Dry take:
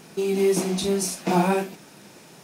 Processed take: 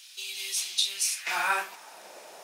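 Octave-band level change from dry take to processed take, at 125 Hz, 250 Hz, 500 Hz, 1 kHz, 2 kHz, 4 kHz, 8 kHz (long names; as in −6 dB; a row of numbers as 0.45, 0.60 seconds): below −35 dB, −32.0 dB, −22.5 dB, −5.0 dB, +4.5 dB, +5.5 dB, +1.0 dB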